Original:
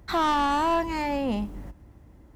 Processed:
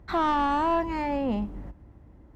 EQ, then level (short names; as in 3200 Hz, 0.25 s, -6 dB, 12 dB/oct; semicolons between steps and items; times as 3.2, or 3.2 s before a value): high shelf 3300 Hz -11 dB; high shelf 6700 Hz -5.5 dB; 0.0 dB